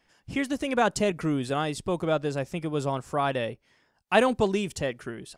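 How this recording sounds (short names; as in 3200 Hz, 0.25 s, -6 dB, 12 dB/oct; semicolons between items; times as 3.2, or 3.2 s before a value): noise floor -70 dBFS; spectral tilt -4.5 dB/oct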